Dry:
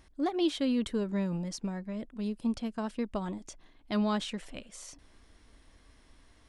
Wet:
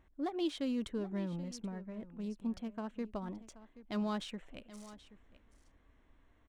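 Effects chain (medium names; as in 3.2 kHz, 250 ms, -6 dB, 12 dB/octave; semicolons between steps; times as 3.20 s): local Wiener filter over 9 samples; on a send: delay 778 ms -16.5 dB; on the sum: trim -6.5 dB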